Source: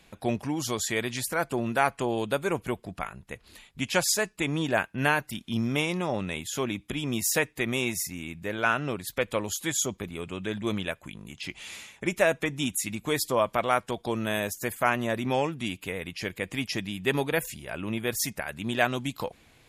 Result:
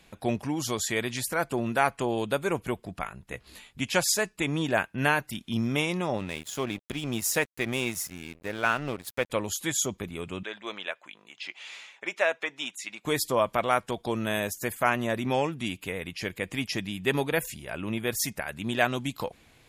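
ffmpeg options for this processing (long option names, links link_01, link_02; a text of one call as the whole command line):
ffmpeg -i in.wav -filter_complex "[0:a]asettb=1/sr,asplit=3[link_01][link_02][link_03];[link_01]atrim=end=3.304[link_04];[link_02]atrim=start=3.3:end=3.8,asetpts=PTS-STARTPTS,afade=type=in:duration=0.004:curve=qsin,afade=type=out:start_time=0.496:duration=0.004:curve=qsin,asplit=2[link_05][link_06];[link_06]adelay=16,volume=-2dB[link_07];[link_05][link_07]amix=inputs=2:normalize=0,atrim=end_sample=22050[link_08];[link_03]atrim=start=3.796[link_09];[link_04][link_08]acrossfade=duration=0.004:curve1=hsin:curve2=qsin[link_10];[link_10][link_09]acrossfade=duration=0.004:curve1=qsin:curve2=hsin,asettb=1/sr,asplit=3[link_11][link_12][link_13];[link_11]atrim=end=6.174[link_14];[link_12]atrim=start=6.17:end=9.3,asetpts=PTS-STARTPTS,afade=type=in:duration=0.004:curve=qsin,afade=type=out:start_time=3.126:duration=0.004:curve=qsin,aeval=exprs='sgn(val(0))*max(abs(val(0))-0.00841,0)':channel_layout=same[link_15];[link_13]atrim=start=9.296[link_16];[link_14][link_15]acrossfade=duration=0.004:curve1=hsin:curve2=qsin[link_17];[link_17][link_16]acrossfade=duration=0.004:curve1=qsin:curve2=hsin,asettb=1/sr,asplit=3[link_18][link_19][link_20];[link_18]atrim=end=10.434[link_21];[link_19]atrim=start=10.43:end=13.05,asetpts=PTS-STARTPTS,afade=type=in:duration=0.004:curve=qsin,afade=type=out:start_time=2.616:duration=0.004:curve=qsin,highpass=620,lowpass=4900[link_22];[link_20]atrim=start=13.046[link_23];[link_21][link_22]acrossfade=duration=0.004:curve1=hsin:curve2=qsin[link_24];[link_24][link_23]acrossfade=duration=0.004:curve1=qsin:curve2=hsin" out.wav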